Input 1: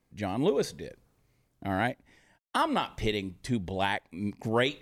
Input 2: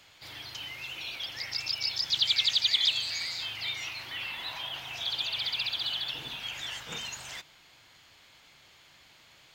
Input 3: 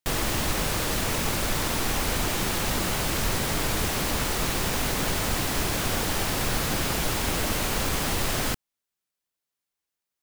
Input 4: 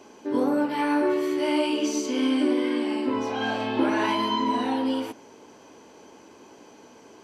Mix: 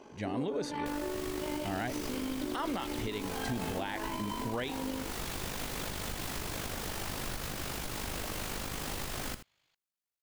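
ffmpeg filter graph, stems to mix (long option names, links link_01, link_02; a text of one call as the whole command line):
ffmpeg -i stem1.wav -i stem2.wav -i stem3.wav -i stem4.wav -filter_complex "[0:a]lowpass=9400,volume=-2.5dB[link_01];[1:a]adelay=200,volume=-16dB[link_02];[2:a]adelay=800,volume=-6dB,asplit=2[link_03][link_04];[link_04]volume=-17.5dB[link_05];[3:a]highshelf=frequency=5500:gain=-10.5,volume=-1dB[link_06];[link_02][link_03][link_06]amix=inputs=3:normalize=0,tremolo=f=50:d=0.571,acompressor=threshold=-33dB:ratio=6,volume=0dB[link_07];[link_05]aecho=0:1:81:1[link_08];[link_01][link_07][link_08]amix=inputs=3:normalize=0,alimiter=level_in=1dB:limit=-24dB:level=0:latency=1:release=89,volume=-1dB" out.wav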